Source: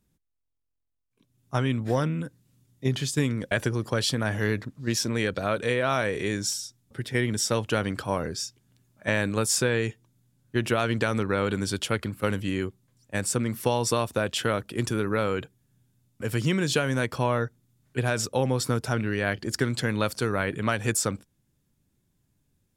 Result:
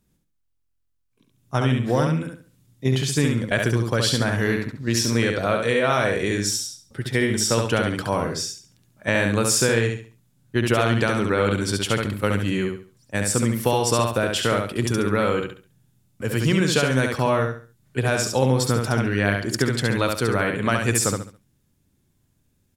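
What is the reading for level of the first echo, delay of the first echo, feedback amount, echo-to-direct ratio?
−4.0 dB, 69 ms, 30%, −3.5 dB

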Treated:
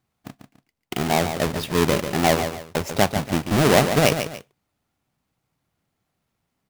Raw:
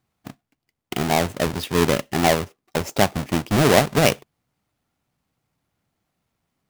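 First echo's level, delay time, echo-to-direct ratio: −8.5 dB, 143 ms, −8.0 dB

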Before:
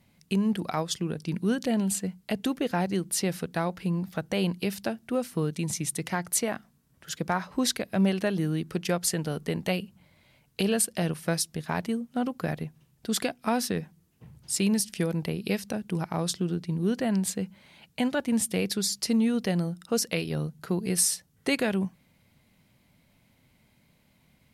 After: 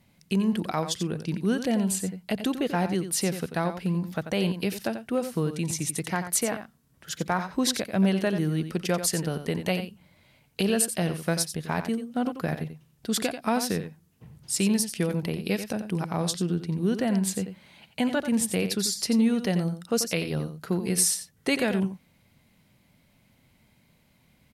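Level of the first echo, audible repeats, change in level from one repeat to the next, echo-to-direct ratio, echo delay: −10.0 dB, 1, repeats not evenly spaced, −10.0 dB, 89 ms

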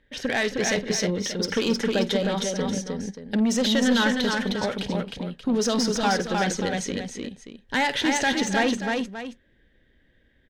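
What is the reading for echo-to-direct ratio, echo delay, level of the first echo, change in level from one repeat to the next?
−2.5 dB, 51 ms, −15.5 dB, repeats not evenly spaced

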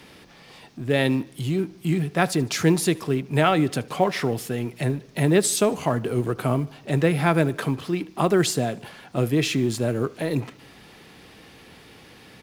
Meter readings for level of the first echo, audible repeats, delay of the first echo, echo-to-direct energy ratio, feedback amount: −22.5 dB, 3, 75 ms, −21.0 dB, 54%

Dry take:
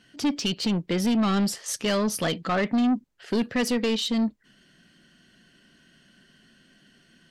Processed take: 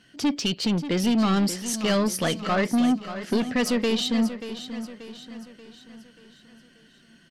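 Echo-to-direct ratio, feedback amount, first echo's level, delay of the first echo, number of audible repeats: −10.5 dB, 48%, −11.5 dB, 584 ms, 4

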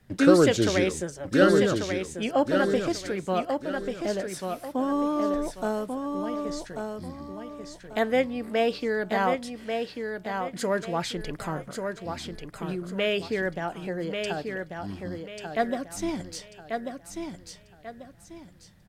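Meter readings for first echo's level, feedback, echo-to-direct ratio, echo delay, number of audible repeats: −5.5 dB, 32%, −5.0 dB, 1,140 ms, 3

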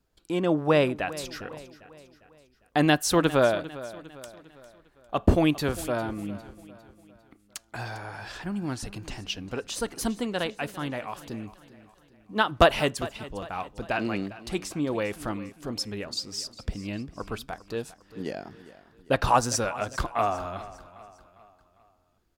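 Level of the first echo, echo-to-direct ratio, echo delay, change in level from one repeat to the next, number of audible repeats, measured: −17.0 dB, −16.0 dB, 402 ms, −6.5 dB, 3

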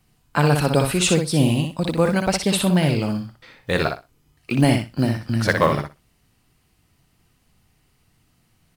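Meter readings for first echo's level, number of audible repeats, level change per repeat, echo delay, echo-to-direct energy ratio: −6.0 dB, 2, −16.0 dB, 61 ms, −6.0 dB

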